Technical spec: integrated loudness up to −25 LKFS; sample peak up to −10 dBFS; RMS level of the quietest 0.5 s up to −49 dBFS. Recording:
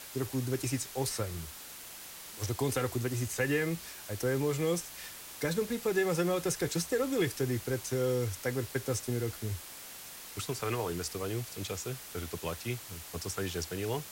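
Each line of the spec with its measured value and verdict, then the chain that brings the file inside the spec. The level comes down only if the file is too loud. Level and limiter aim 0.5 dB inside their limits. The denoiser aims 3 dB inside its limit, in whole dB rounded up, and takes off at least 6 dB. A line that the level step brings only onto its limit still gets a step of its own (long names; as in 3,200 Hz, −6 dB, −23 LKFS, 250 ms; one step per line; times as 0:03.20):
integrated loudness −34.0 LKFS: in spec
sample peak −18.5 dBFS: in spec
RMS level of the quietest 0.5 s −47 dBFS: out of spec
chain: broadband denoise 6 dB, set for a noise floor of −47 dBFS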